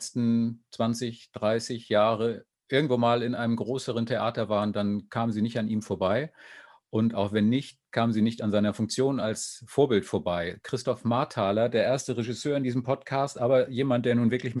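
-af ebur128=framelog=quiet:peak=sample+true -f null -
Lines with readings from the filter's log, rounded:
Integrated loudness:
  I:         -27.2 LUFS
  Threshold: -37.4 LUFS
Loudness range:
  LRA:         2.1 LU
  Threshold: -47.5 LUFS
  LRA low:   -28.7 LUFS
  LRA high:  -26.6 LUFS
Sample peak:
  Peak:       -8.9 dBFS
True peak:
  Peak:       -8.9 dBFS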